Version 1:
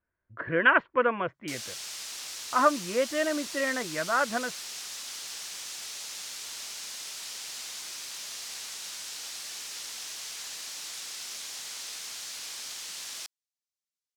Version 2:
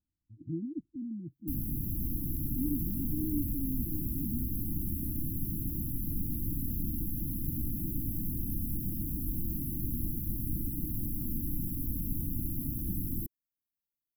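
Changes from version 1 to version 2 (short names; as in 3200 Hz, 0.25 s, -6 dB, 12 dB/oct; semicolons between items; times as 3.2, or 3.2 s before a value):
background: remove band-pass 5700 Hz, Q 1.2; master: add brick-wall FIR band-stop 340–11000 Hz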